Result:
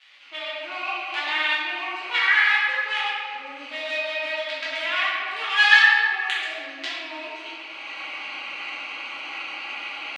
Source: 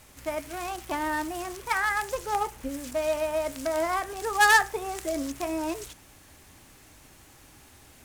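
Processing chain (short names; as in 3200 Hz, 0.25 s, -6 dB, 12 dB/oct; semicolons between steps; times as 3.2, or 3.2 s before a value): Wiener smoothing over 25 samples; recorder AGC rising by 35 dB/s; comb 3.6 ms, depth 36%; in parallel at +2.5 dB: compressor 6:1, threshold -28 dBFS, peak gain reduction 13.5 dB; on the sum: crackle 350/s -36 dBFS; tempo 0.79×; Butterworth band-pass 2600 Hz, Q 1.4; reverb RT60 2.2 s, pre-delay 5 ms, DRR -10.5 dB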